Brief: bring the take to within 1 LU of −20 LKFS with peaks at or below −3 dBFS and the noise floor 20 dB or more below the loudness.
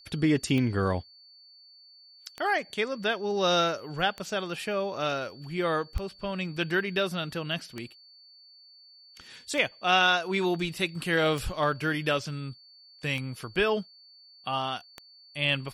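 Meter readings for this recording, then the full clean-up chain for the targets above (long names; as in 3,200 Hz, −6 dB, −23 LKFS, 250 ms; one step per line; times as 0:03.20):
number of clicks 9; interfering tone 4,500 Hz; level of the tone −52 dBFS; integrated loudness −28.5 LKFS; sample peak −9.5 dBFS; target loudness −20.0 LKFS
→ click removal
notch filter 4,500 Hz, Q 30
level +8.5 dB
brickwall limiter −3 dBFS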